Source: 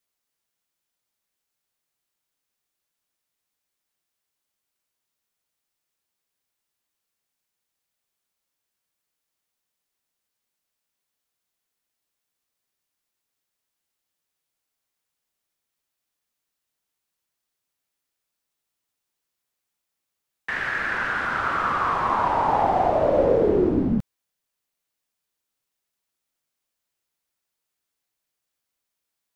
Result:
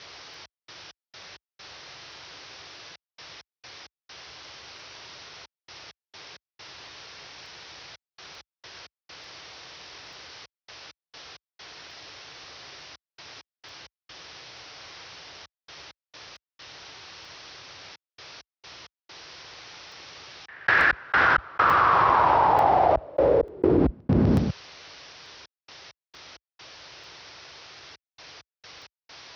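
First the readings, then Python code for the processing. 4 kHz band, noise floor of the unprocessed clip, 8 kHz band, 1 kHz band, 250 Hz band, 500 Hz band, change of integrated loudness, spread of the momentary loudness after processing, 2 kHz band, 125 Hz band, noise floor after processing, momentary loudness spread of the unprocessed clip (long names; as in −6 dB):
+9.0 dB, −83 dBFS, can't be measured, +2.5 dB, +0.5 dB, −1.5 dB, +1.5 dB, 5 LU, +4.0 dB, +5.0 dB, below −85 dBFS, 7 LU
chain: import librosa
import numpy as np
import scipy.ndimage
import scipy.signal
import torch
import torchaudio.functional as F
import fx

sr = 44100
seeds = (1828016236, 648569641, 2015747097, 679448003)

y = scipy.signal.sosfilt(scipy.signal.butter(16, 5800.0, 'lowpass', fs=sr, output='sos'), x)
y = fx.peak_eq(y, sr, hz=220.0, db=-12.5, octaves=0.45)
y = fx.echo_feedback(y, sr, ms=125, feedback_pct=34, wet_db=-10.0)
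y = fx.rider(y, sr, range_db=10, speed_s=0.5)
y = fx.step_gate(y, sr, bpm=66, pattern='xx.x.x.xxxx', floor_db=-60.0, edge_ms=4.5)
y = scipy.signal.sosfilt(scipy.signal.butter(4, 57.0, 'highpass', fs=sr, output='sos'), y)
y = fx.buffer_crackle(y, sr, first_s=0.34, period_s=0.89, block=64, kind='zero')
y = fx.env_flatten(y, sr, amount_pct=100)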